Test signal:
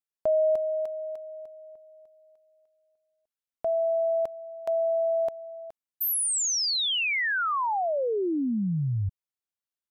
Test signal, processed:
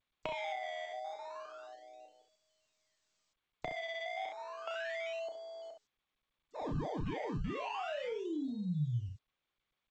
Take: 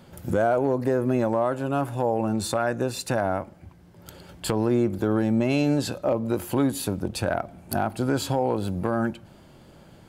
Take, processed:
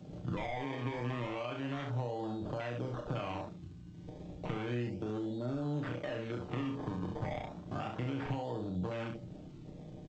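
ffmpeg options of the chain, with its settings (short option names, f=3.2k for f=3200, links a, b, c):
-filter_complex "[0:a]aresample=11025,aresample=44100,acrusher=samples=22:mix=1:aa=0.000001:lfo=1:lforange=22:lforate=0.32,bandreject=f=422.3:t=h:w=4,bandreject=f=844.6:t=h:w=4,bandreject=f=1.2669k:t=h:w=4,acompressor=threshold=-50dB:ratio=2:attack=47:release=90:knee=1:detection=peak,afwtdn=0.00562,equalizer=f=3.5k:t=o:w=0.83:g=7,aecho=1:1:6.6:0.42,aecho=1:1:33|66:0.473|0.398,acrossover=split=160[a][b];[b]acompressor=threshold=-36dB:ratio=4:attack=2.9:release=132:knee=2.83:detection=peak[c];[a][c]amix=inputs=2:normalize=0,volume=1dB" -ar 16000 -c:a g722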